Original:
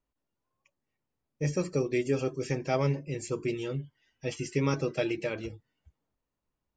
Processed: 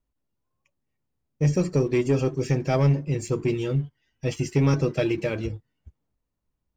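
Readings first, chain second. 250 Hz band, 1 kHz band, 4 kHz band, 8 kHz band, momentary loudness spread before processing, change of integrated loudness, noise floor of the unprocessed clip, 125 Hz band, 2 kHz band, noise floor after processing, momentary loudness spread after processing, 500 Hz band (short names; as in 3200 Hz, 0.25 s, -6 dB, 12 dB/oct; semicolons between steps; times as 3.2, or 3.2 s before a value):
+7.0 dB, +3.5 dB, +3.5 dB, +3.0 dB, 10 LU, +7.0 dB, under -85 dBFS, +10.0 dB, +3.0 dB, -80 dBFS, 10 LU, +5.0 dB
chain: low shelf 230 Hz +10 dB; sample leveller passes 1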